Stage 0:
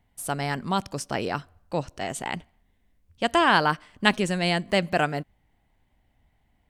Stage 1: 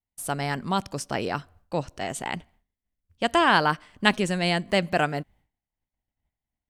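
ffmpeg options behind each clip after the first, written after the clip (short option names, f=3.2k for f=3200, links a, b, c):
-af "agate=range=-33dB:threshold=-52dB:ratio=3:detection=peak"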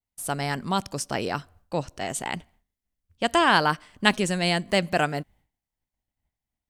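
-af "adynamicequalizer=threshold=0.01:dfrequency=4300:dqfactor=0.7:tfrequency=4300:tqfactor=0.7:attack=5:release=100:ratio=0.375:range=2.5:mode=boostabove:tftype=highshelf"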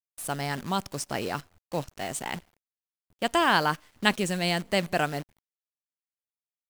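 -af "acrusher=bits=7:dc=4:mix=0:aa=0.000001,volume=-3dB"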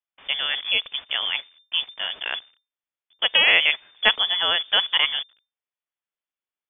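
-af "lowpass=f=3.1k:t=q:w=0.5098,lowpass=f=3.1k:t=q:w=0.6013,lowpass=f=3.1k:t=q:w=0.9,lowpass=f=3.1k:t=q:w=2.563,afreqshift=-3600,volume=5.5dB"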